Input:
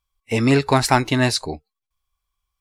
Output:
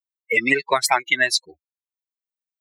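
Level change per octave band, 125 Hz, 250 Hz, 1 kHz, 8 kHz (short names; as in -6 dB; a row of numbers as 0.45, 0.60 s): -23.0, -11.0, -2.0, +1.5 dB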